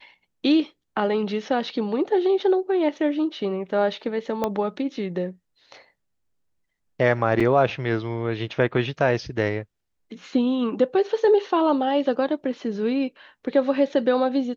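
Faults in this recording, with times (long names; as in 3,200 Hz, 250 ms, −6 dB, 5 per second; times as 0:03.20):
0:04.44: click −11 dBFS
0:07.40–0:07.41: drop-out 5.2 ms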